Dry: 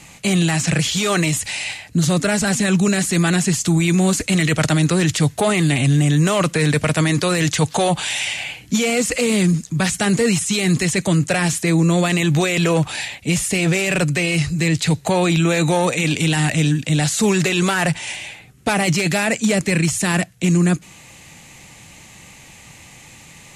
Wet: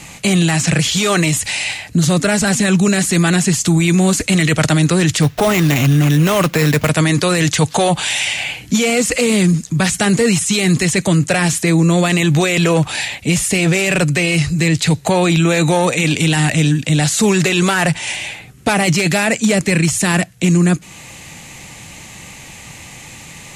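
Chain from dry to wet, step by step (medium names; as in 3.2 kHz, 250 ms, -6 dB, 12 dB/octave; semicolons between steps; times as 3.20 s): in parallel at -0.5 dB: compression, threshold -27 dBFS, peak gain reduction 14 dB; 5.22–6.89 s: on the sum: sample-rate reducer 9.4 kHz, jitter 0%; trim +1.5 dB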